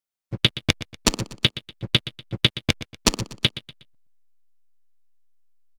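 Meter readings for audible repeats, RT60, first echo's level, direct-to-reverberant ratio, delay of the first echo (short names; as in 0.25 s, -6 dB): 3, none, -15.0 dB, none, 0.121 s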